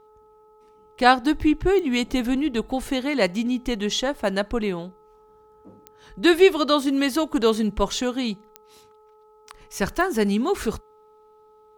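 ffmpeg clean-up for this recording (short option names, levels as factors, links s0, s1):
-af "adeclick=t=4,bandreject=f=429.6:t=h:w=4,bandreject=f=859.2:t=h:w=4,bandreject=f=1288.8:t=h:w=4"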